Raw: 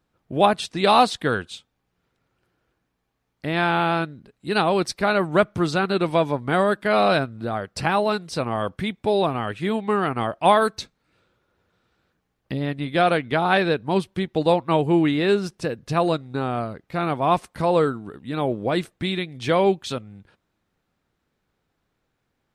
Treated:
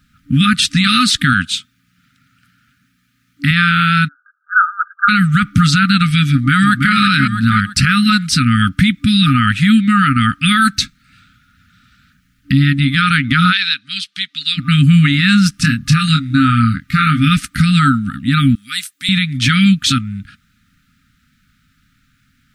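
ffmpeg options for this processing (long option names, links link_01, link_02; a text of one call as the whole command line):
ffmpeg -i in.wav -filter_complex "[0:a]asettb=1/sr,asplit=3[link_01][link_02][link_03];[link_01]atrim=end=1.334[link_04];[link_02]atrim=start=1.33:end=3.51,asetpts=PTS-STARTPTS,afade=type=in:duration=0.004:curve=qsin,afade=type=out:start_time=2.176:duration=0.004:curve=qsin,highpass=110[link_05];[link_03]atrim=start=3.506[link_06];[link_04][link_05]acrossfade=duration=0.004:curve1=hsin:curve2=qsin[link_07];[link_07][link_06]acrossfade=duration=0.004:curve1=qsin:curve2=hsin,asplit=3[link_08][link_09][link_10];[link_08]afade=type=out:start_time=4.07:duration=0.02[link_11];[link_09]asuperpass=centerf=1300:order=20:qfactor=2.2,afade=type=in:start_time=4.07:duration=0.02,afade=type=out:start_time=5.08:duration=0.02[link_12];[link_10]afade=type=in:start_time=5.08:duration=0.02[link_13];[link_11][link_12][link_13]amix=inputs=3:normalize=0,asplit=2[link_14][link_15];[link_15]afade=type=in:start_time=6.29:duration=0.01,afade=type=out:start_time=6.94:duration=0.01,aecho=0:1:330|660|990|1320:0.501187|0.175416|0.0613954|0.0214884[link_16];[link_14][link_16]amix=inputs=2:normalize=0,asplit=3[link_17][link_18][link_19];[link_17]afade=type=out:start_time=13.51:duration=0.02[link_20];[link_18]bandpass=frequency=4100:width_type=q:width=1.5,afade=type=in:start_time=13.51:duration=0.02,afade=type=out:start_time=14.57:duration=0.02[link_21];[link_19]afade=type=in:start_time=14.57:duration=0.02[link_22];[link_20][link_21][link_22]amix=inputs=3:normalize=0,asettb=1/sr,asplit=3[link_23][link_24][link_25];[link_23]atrim=end=15.524[link_26];[link_24]atrim=start=15.52:end=17.3,asetpts=PTS-STARTPTS,afade=type=in:duration=0.004:curve=qsin,afade=type=out:start_time=1.776:duration=0.004:curve=qsin,asplit=2[link_27][link_28];[link_28]adelay=26,volume=-6.5dB[link_29];[link_27][link_29]amix=inputs=2:normalize=0,atrim=end_sample=78498[link_30];[link_25]atrim=start=17.296[link_31];[link_26][link_30]acrossfade=duration=0.004:curve1=hsin:curve2=qsin[link_32];[link_32][link_31]acrossfade=duration=0.004:curve1=qsin:curve2=hsin,asettb=1/sr,asplit=3[link_33][link_34][link_35];[link_33]atrim=end=18.554[link_36];[link_34]atrim=start=18.55:end=19.09,asetpts=PTS-STARTPTS,afade=type=in:duration=0.004:curve=qsin,afade=type=out:start_time=0.536:duration=0.004:curve=qsin,aderivative[link_37];[link_35]atrim=start=19.086[link_38];[link_36][link_37]acrossfade=duration=0.004:curve1=hsin:curve2=qsin[link_39];[link_39][link_38]acrossfade=duration=0.004:curve1=qsin:curve2=hsin,afftfilt=real='re*(1-between(b*sr/4096,290,1200))':imag='im*(1-between(b*sr/4096,290,1200))':win_size=4096:overlap=0.75,alimiter=level_in=20dB:limit=-1dB:release=50:level=0:latency=1,volume=-1.5dB" out.wav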